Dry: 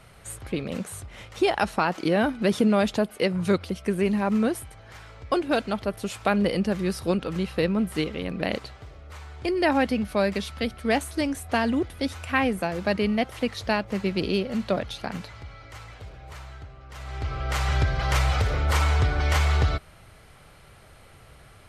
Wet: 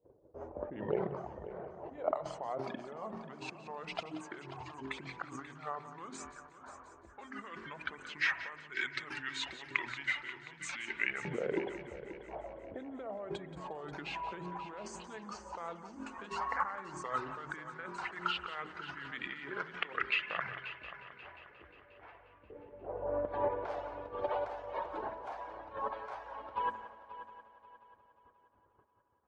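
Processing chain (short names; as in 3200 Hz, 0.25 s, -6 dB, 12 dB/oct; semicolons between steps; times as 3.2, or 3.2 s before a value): reverb removal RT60 1.1 s; notches 60/120/180/240/300/360/420/480/540 Hz; gate -51 dBFS, range -25 dB; low-pass opened by the level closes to 450 Hz, open at -24 dBFS; high shelf 6700 Hz +5 dB; negative-ratio compressor -36 dBFS, ratio -1; LFO band-pass saw up 0.12 Hz 720–3300 Hz; multi-head echo 0.132 s, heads first and third, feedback 53%, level -14 dB; on a send at -14.5 dB: reverb RT60 0.70 s, pre-delay 46 ms; on the sum: speed mistake 45 rpm record played at 33 rpm; gain +6.5 dB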